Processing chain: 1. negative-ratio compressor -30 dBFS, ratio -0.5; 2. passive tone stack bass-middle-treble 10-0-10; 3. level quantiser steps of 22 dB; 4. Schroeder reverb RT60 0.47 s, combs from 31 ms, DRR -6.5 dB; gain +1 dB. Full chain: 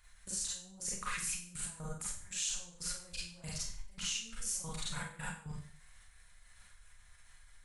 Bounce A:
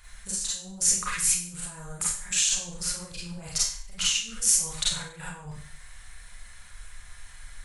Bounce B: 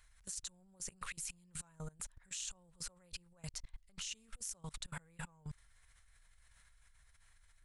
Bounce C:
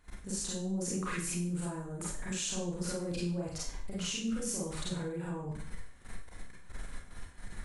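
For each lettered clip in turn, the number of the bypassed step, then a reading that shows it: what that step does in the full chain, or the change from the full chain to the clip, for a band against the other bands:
3, crest factor change +6.0 dB; 4, crest factor change +4.5 dB; 2, 250 Hz band +14.0 dB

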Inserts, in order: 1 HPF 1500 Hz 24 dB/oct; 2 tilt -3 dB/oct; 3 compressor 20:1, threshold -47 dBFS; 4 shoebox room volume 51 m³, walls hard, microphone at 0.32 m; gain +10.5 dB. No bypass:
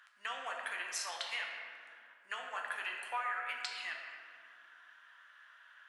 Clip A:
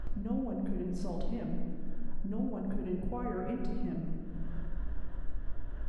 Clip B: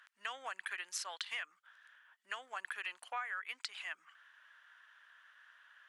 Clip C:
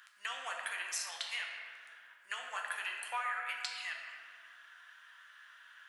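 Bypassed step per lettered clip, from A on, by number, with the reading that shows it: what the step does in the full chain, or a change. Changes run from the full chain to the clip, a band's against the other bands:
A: 1, crest factor change -13.0 dB; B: 4, crest factor change +2.5 dB; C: 2, 500 Hz band -4.5 dB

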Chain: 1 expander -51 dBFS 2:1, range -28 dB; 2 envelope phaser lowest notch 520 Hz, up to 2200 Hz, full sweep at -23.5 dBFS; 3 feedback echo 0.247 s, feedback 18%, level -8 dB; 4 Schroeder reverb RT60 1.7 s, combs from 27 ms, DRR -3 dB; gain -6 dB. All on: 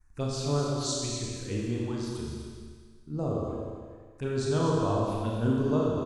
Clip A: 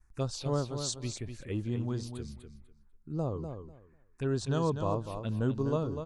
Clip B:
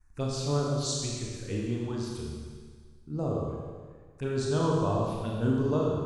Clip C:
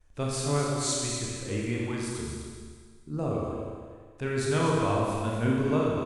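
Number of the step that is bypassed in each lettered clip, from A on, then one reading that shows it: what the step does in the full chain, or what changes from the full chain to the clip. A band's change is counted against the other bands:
4, echo-to-direct 4.0 dB to -8.0 dB; 3, momentary loudness spread change -1 LU; 2, 2 kHz band +7.0 dB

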